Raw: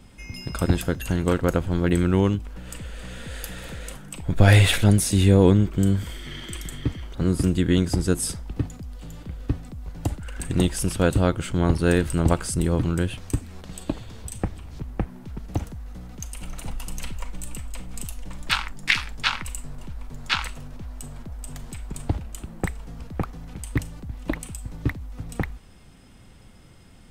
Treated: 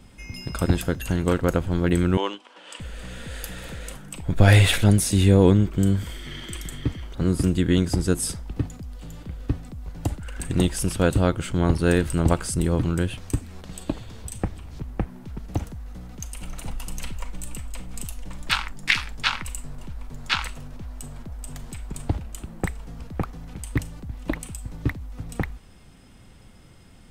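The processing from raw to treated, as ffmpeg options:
-filter_complex "[0:a]asettb=1/sr,asplit=3[a][b][c];[a]atrim=end=2.174[d];[b]atrim=start=2.17:end=2.8,asetpts=PTS-STARTPTS,afade=t=in:d=0.004:c=qsin,afade=t=out:st=0.626:d=0.004:c=qsin,highpass=f=360:w=0.5412,highpass=f=360:w=1.3066,equalizer=f=420:t=q:w=4:g=-5,equalizer=f=990:t=q:w=4:g=6,equalizer=f=3.1k:t=q:w=4:g=9,equalizer=f=6.8k:t=q:w=4:g=-4,lowpass=f=8.3k:w=0.5412,lowpass=f=8.3k:w=1.3066[e];[c]atrim=start=2.796[f];[d][e]acrossfade=d=0.004:c1=hsin:c2=qsin[g];[g][f]acrossfade=d=0.004:c1=qsin:c2=hsin"

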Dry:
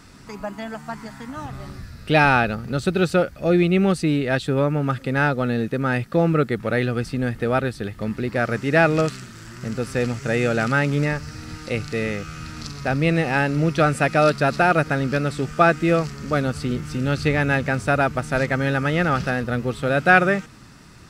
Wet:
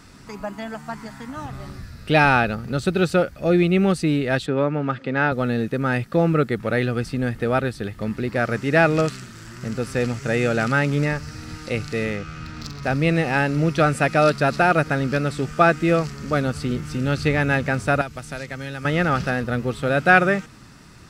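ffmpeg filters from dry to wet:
-filter_complex "[0:a]asettb=1/sr,asplit=3[a][b][c];[a]atrim=end=4.464[d];[b]atrim=start=4.46:end=5.32,asetpts=PTS-STARTPTS,afade=t=in:d=0.004:c=qsin,afade=t=out:st=0.856:d=0.004:c=qsin,highpass=160,lowpass=3.8k[e];[c]atrim=start=5.316[f];[d][e]acrossfade=d=0.004:c1=hsin:c2=qsin[g];[g][f]acrossfade=d=0.004:c1=qsin:c2=hsin,asettb=1/sr,asplit=3[h][i][j];[h]atrim=end=12.054[k];[i]atrim=start=12.05:end=12.83,asetpts=PTS-STARTPTS,afade=t=in:d=0.004:c=qsin,afade=t=out:st=0.776:d=0.004:c=qsin,adynamicsmooth=sensitivity=6.5:basefreq=4.3k[l];[j]atrim=start=12.826[m];[k][l]acrossfade=d=0.004:c1=hsin:c2=qsin[n];[n][m]acrossfade=d=0.004:c1=qsin:c2=hsin,asettb=1/sr,asplit=3[o][p][q];[o]atrim=end=18.014[r];[p]atrim=start=18.01:end=18.85,asetpts=PTS-STARTPTS,afade=t=in:d=0.004:c=qsin,afade=t=out:st=0.836:d=0.004:c=qsin,acrossover=split=100|2700[s][t][u];[s]acompressor=threshold=-42dB:ratio=4[v];[t]acompressor=threshold=-32dB:ratio=4[w];[u]acompressor=threshold=-38dB:ratio=4[x];[v][w][x]amix=inputs=3:normalize=0[y];[q]atrim=start=18.846[z];[r][y]acrossfade=d=0.004:c1=hsin:c2=qsin[aa];[aa][z]acrossfade=d=0.004:c1=qsin:c2=hsin"

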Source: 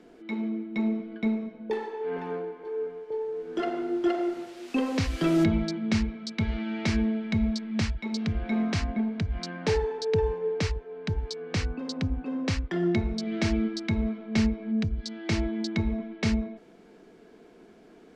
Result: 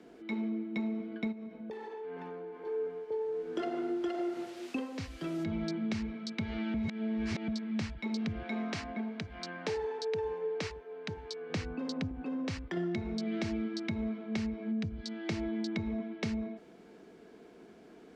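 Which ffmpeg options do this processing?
-filter_complex "[0:a]asplit=3[a][b][c];[a]afade=t=out:st=1.31:d=0.02[d];[b]acompressor=threshold=-38dB:ratio=6:attack=3.2:release=140:knee=1:detection=peak,afade=t=in:st=1.31:d=0.02,afade=t=out:st=2.61:d=0.02[e];[c]afade=t=in:st=2.61:d=0.02[f];[d][e][f]amix=inputs=3:normalize=0,asettb=1/sr,asplit=3[g][h][i];[g]atrim=end=8.424[j];[h]atrim=start=8.42:end=11.5,asetpts=PTS-STARTPTS,afade=t=in:d=0.004:c=qsin,afade=t=out:st=3.076:d=0.004:c=qsin,highpass=f=450:p=1[k];[i]atrim=start=11.496[l];[j][k]acrossfade=d=0.004:c1=hsin:c2=qsin[m];[m][l]acrossfade=d=0.004:c1=qsin:c2=hsin,asettb=1/sr,asplit=3[n][o][p];[n]atrim=end=12.114[q];[o]atrim=start=12.11:end=12.77,asetpts=PTS-STARTPTS,afade=t=in:d=0.004:c=qsin,afade=t=out:st=0.656:d=0.004:c=qsin,acompressor=threshold=-31dB:ratio=2.5:attack=3.2:release=140:knee=1:detection=peak[r];[p]atrim=start=12.766[s];[q][r]acrossfade=d=0.004:c1=hsin:c2=qsin[t];[t][s]acrossfade=d=0.004:c1=qsin:c2=hsin,asplit=5[u][v][w][x][y];[u]atrim=end=4.88,asetpts=PTS-STARTPTS,afade=t=out:st=4.65:d=0.23:silence=0.281838[z];[v]atrim=start=4.88:end=5.44,asetpts=PTS-STARTPTS,volume=-11dB[aa];[w]atrim=start=5.44:end=6.742,asetpts=PTS-STARTPTS,afade=t=in:d=0.23:silence=0.281838[ab];[x]atrim=start=6.738:end=7.482,asetpts=PTS-STARTPTS,areverse[ac];[y]atrim=start=7.478[ad];[z][aa][ab]concat=n=3:v=0:a=1[ae];[ae][ac]acrossfade=d=0.004:c1=hsin:c2=hsin[af];[af][ad]acrossfade=d=0.004:c1=hsin:c2=hsin,acrossover=split=100|700|3400[ag][ah][ai][aj];[ag]acompressor=threshold=-42dB:ratio=4[ak];[ah]acompressor=threshold=-26dB:ratio=4[al];[ai]acompressor=threshold=-38dB:ratio=4[am];[aj]acompressor=threshold=-44dB:ratio=4[an];[ak][al][am][an]amix=inputs=4:normalize=0,highpass=43,acompressor=threshold=-29dB:ratio=6,volume=-1.5dB"

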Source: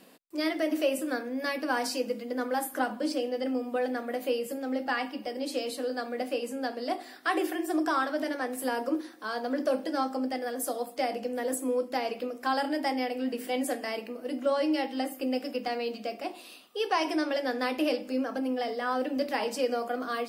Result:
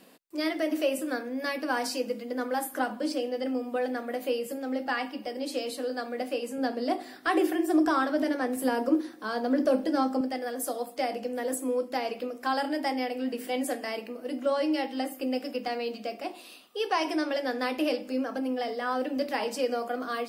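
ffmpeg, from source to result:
-filter_complex "[0:a]asettb=1/sr,asplit=3[a][b][c];[a]atrim=end=6.584[d];[b]atrim=start=6.58:end=10.21,asetpts=PTS-STARTPTS,afade=t=in:d=0.004:c=qsin,afade=t=out:st=3.626:d=0.004:c=qsin,lowshelf=f=340:g=10[e];[c]atrim=start=10.206[f];[d][e]acrossfade=d=0.004:c1=hsin:c2=qsin[g];[g][f]acrossfade=d=0.004:c1=qsin:c2=hsin"

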